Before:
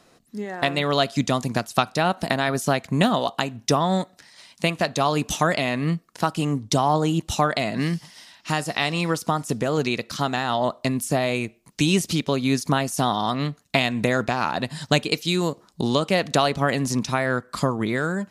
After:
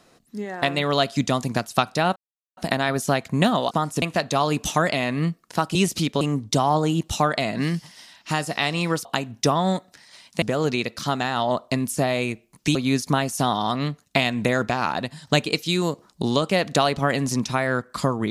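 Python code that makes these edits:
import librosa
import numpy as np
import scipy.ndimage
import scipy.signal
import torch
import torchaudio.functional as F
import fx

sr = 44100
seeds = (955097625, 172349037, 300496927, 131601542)

y = fx.edit(x, sr, fx.insert_silence(at_s=2.16, length_s=0.41),
    fx.swap(start_s=3.3, length_s=1.37, other_s=9.24, other_length_s=0.31),
    fx.move(start_s=11.88, length_s=0.46, to_s=6.4),
    fx.fade_out_to(start_s=14.55, length_s=0.31, floor_db=-14.0), tone=tone)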